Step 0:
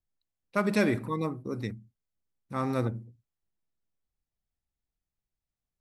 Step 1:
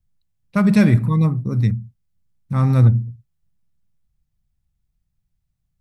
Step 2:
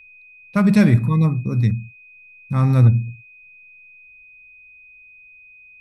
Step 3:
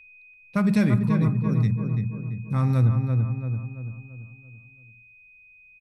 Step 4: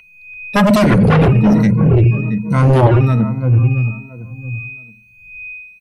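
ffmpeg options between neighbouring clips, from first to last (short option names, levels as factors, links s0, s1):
-af "lowshelf=f=230:t=q:w=1.5:g=13,volume=1.78"
-af "aeval=exprs='val(0)+0.00631*sin(2*PI*2500*n/s)':c=same"
-filter_complex "[0:a]asplit=2[s0][s1];[s1]adelay=337,lowpass=f=1700:p=1,volume=0.562,asplit=2[s2][s3];[s3]adelay=337,lowpass=f=1700:p=1,volume=0.47,asplit=2[s4][s5];[s5]adelay=337,lowpass=f=1700:p=1,volume=0.47,asplit=2[s6][s7];[s7]adelay=337,lowpass=f=1700:p=1,volume=0.47,asplit=2[s8][s9];[s9]adelay=337,lowpass=f=1700:p=1,volume=0.47,asplit=2[s10][s11];[s11]adelay=337,lowpass=f=1700:p=1,volume=0.47[s12];[s2][s4][s6][s8][s10][s12]amix=inputs=6:normalize=0[s13];[s0][s13]amix=inputs=2:normalize=0,acompressor=threshold=0.141:ratio=1.5,volume=0.631"
-filter_complex "[0:a]afftfilt=real='re*pow(10,20/40*sin(2*PI*(1.9*log(max(b,1)*sr/1024/100)/log(2)-(1.2)*(pts-256)/sr)))':imag='im*pow(10,20/40*sin(2*PI*(1.9*log(max(b,1)*sr/1024/100)/log(2)-(1.2)*(pts-256)/sr)))':win_size=1024:overlap=0.75,asplit=2[s0][s1];[s1]aeval=exprs='0.75*sin(PI/2*5.62*val(0)/0.75)':c=same,volume=0.631[s2];[s0][s2]amix=inputs=2:normalize=0,volume=0.75"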